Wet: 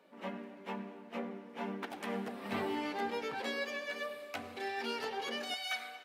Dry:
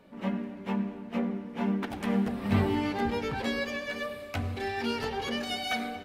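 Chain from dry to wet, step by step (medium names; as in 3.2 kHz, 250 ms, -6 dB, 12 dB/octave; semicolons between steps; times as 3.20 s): high-pass 350 Hz 12 dB/octave, from 5.54 s 1 kHz; trim -4.5 dB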